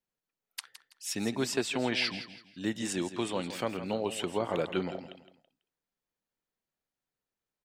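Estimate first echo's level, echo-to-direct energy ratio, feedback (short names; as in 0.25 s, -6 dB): -12.0 dB, -11.5 dB, 32%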